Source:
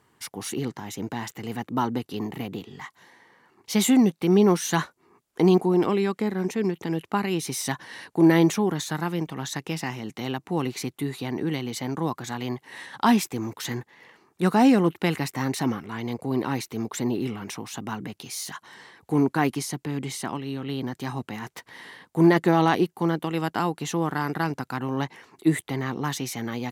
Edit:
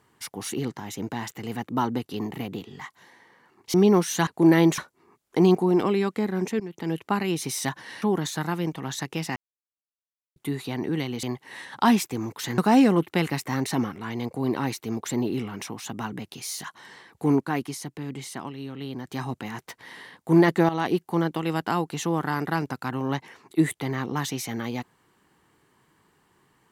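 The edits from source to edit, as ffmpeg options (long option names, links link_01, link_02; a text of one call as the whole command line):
ffmpeg -i in.wav -filter_complex "[0:a]asplit=13[link_01][link_02][link_03][link_04][link_05][link_06][link_07][link_08][link_09][link_10][link_11][link_12][link_13];[link_01]atrim=end=3.742[link_14];[link_02]atrim=start=4.278:end=4.812[link_15];[link_03]atrim=start=8.048:end=8.562[link_16];[link_04]atrim=start=4.808:end=6.63,asetpts=PTS-STARTPTS,afade=type=out:start_time=1.818:duration=0.004:curve=hsin:silence=0.141254[link_17];[link_05]atrim=start=6.63:end=8.052,asetpts=PTS-STARTPTS,afade=type=in:duration=0.32:silence=0.141254[link_18];[link_06]atrim=start=8.558:end=9.9,asetpts=PTS-STARTPTS,afade=type=out:start_time=1.338:duration=0.004:curve=hsin[link_19];[link_07]atrim=start=9.9:end=10.9,asetpts=PTS-STARTPTS,volume=0[link_20];[link_08]atrim=start=10.9:end=11.772,asetpts=PTS-STARTPTS,afade=type=in:duration=0.004:curve=hsin[link_21];[link_09]atrim=start=12.438:end=13.792[link_22];[link_10]atrim=start=14.458:end=19.282[link_23];[link_11]atrim=start=19.278:end=20.962,asetpts=PTS-STARTPTS,volume=-4.5dB[link_24];[link_12]atrim=start=20.958:end=22.57,asetpts=PTS-STARTPTS,afade=type=out:start_time=1.608:duration=0.004:curve=hsin:silence=0.223872[link_25];[link_13]atrim=start=22.57,asetpts=PTS-STARTPTS,afade=type=in:duration=0.32:silence=0.223872[link_26];[link_14][link_15]acrossfade=duration=0.004:curve1=hsin:curve2=hsin[link_27];[link_27][link_16]acrossfade=duration=0.004:curve1=hsin:curve2=hsin[link_28];[link_17][link_18]concat=n=2:v=0:a=1[link_29];[link_28][link_29]acrossfade=duration=0.004:curve1=hsin:curve2=hsin[link_30];[link_19][link_20][link_21]concat=n=3:v=0:a=1[link_31];[link_30][link_31]acrossfade=duration=0.004:curve1=hsin:curve2=hsin[link_32];[link_32][link_22]acrossfade=duration=0.004:curve1=hsin:curve2=hsin[link_33];[link_33][link_23]acrossfade=duration=0.004:curve1=hsin:curve2=hsin[link_34];[link_34][link_24]acrossfade=duration=0.004:curve1=hsin:curve2=hsin[link_35];[link_25][link_26]concat=n=2:v=0:a=1[link_36];[link_35][link_36]acrossfade=duration=0.004:curve1=hsin:curve2=hsin" out.wav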